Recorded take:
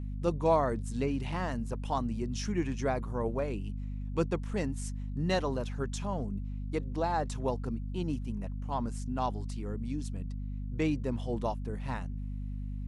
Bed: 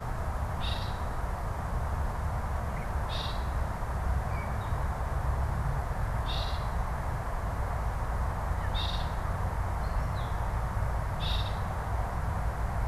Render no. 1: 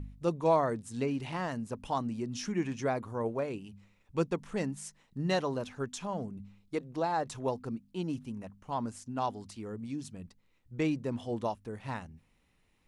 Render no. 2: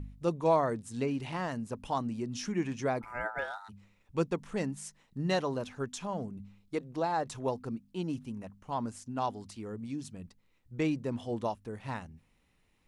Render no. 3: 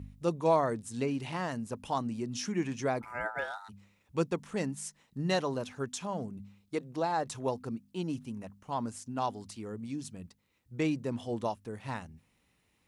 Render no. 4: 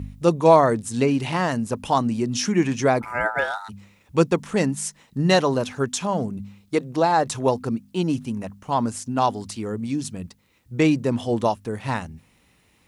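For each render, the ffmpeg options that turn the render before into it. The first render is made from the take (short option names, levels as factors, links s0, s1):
-af "bandreject=f=50:t=h:w=4,bandreject=f=100:t=h:w=4,bandreject=f=150:t=h:w=4,bandreject=f=200:t=h:w=4,bandreject=f=250:t=h:w=4"
-filter_complex "[0:a]asplit=3[s0][s1][s2];[s0]afade=t=out:st=3.01:d=0.02[s3];[s1]aeval=exprs='val(0)*sin(2*PI*1100*n/s)':c=same,afade=t=in:st=3.01:d=0.02,afade=t=out:st=3.68:d=0.02[s4];[s2]afade=t=in:st=3.68:d=0.02[s5];[s3][s4][s5]amix=inputs=3:normalize=0"
-af "highpass=59,highshelf=f=4800:g=4.5"
-af "volume=3.98"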